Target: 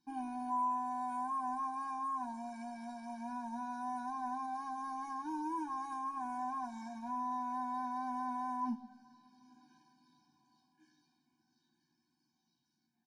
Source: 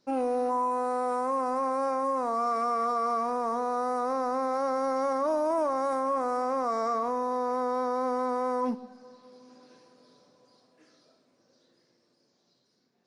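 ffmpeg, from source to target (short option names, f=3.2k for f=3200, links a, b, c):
-filter_complex "[0:a]asplit=2[a][b];[b]adelay=13,volume=-5dB[c];[a][c]amix=inputs=2:normalize=0,afftfilt=real='re*eq(mod(floor(b*sr/1024/360),2),0)':imag='im*eq(mod(floor(b*sr/1024/360),2),0)':win_size=1024:overlap=0.75,volume=-8.5dB"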